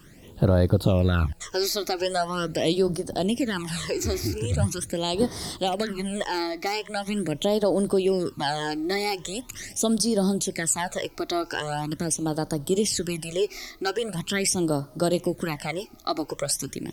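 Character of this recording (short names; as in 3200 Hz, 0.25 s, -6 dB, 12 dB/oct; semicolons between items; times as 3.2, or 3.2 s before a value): phasing stages 12, 0.42 Hz, lowest notch 160–2600 Hz; a quantiser's noise floor 12-bit, dither triangular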